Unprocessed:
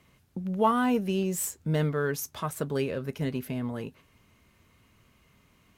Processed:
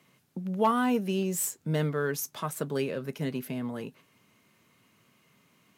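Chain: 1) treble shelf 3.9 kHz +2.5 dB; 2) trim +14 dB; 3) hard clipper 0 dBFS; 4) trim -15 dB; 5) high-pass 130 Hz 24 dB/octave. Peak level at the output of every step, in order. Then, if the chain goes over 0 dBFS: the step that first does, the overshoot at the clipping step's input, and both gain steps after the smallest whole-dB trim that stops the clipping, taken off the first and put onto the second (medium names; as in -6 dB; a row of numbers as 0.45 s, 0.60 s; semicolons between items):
-10.5 dBFS, +3.5 dBFS, 0.0 dBFS, -15.0 dBFS, -12.0 dBFS; step 2, 3.5 dB; step 2 +10 dB, step 4 -11 dB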